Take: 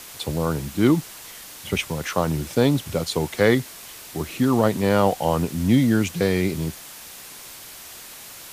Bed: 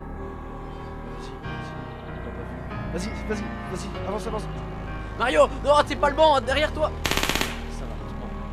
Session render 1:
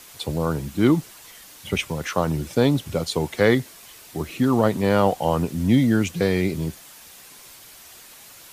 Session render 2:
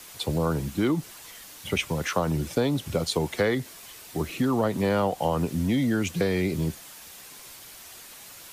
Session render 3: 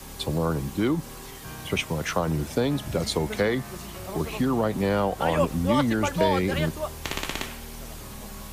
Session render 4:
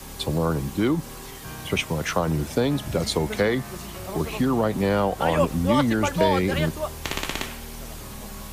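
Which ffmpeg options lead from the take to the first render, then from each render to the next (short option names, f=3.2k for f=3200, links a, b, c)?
-af "afftdn=nr=6:nf=-41"
-filter_complex "[0:a]acrossover=split=300|470|3700[a][b][c][d];[a]alimiter=limit=-18.5dB:level=0:latency=1[e];[e][b][c][d]amix=inputs=4:normalize=0,acompressor=threshold=-20dB:ratio=6"
-filter_complex "[1:a]volume=-7.5dB[a];[0:a][a]amix=inputs=2:normalize=0"
-af "volume=2dB"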